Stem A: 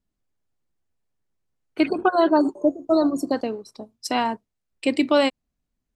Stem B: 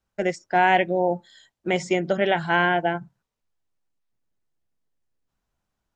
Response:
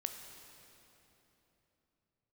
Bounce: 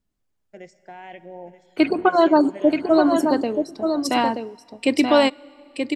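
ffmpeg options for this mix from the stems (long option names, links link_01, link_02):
-filter_complex "[0:a]volume=1.5dB,asplit=3[link_01][link_02][link_03];[link_02]volume=-18dB[link_04];[link_03]volume=-5dB[link_05];[1:a]alimiter=limit=-12.5dB:level=0:latency=1,equalizer=frequency=1500:width=4:gain=-4.5,adelay=350,volume=-19.5dB,asplit=3[link_06][link_07][link_08];[link_07]volume=-5dB[link_09];[link_08]volume=-9.5dB[link_10];[2:a]atrim=start_sample=2205[link_11];[link_04][link_09]amix=inputs=2:normalize=0[link_12];[link_12][link_11]afir=irnorm=-1:irlink=0[link_13];[link_05][link_10]amix=inputs=2:normalize=0,aecho=0:1:929:1[link_14];[link_01][link_06][link_13][link_14]amix=inputs=4:normalize=0"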